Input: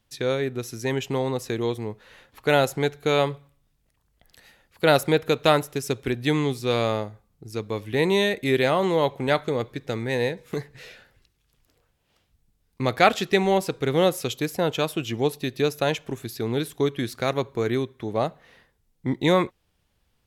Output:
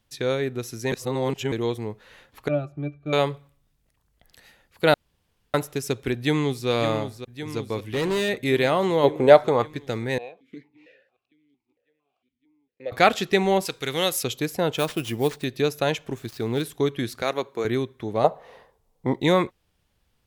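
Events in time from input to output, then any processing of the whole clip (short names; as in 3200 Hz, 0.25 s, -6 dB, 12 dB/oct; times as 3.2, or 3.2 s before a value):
0.92–1.52 reverse
2.48–3.13 octave resonator D, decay 0.1 s
4.94–5.54 room tone
6.15–6.68 echo throw 0.56 s, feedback 70%, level -9 dB
7.79–8.29 hard clip -21.5 dBFS
9.03–9.66 bell 320 Hz -> 1100 Hz +12.5 dB 1.2 oct
10.18–12.92 vowel sequencer 4.4 Hz
13.65–14.23 tilt shelf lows -8 dB, about 1400 Hz
14.77–15.44 sample-rate reducer 13000 Hz
16.12–16.63 switching dead time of 0.054 ms
17.22–17.65 Bessel high-pass 320 Hz
18.24–19.2 band shelf 680 Hz +12 dB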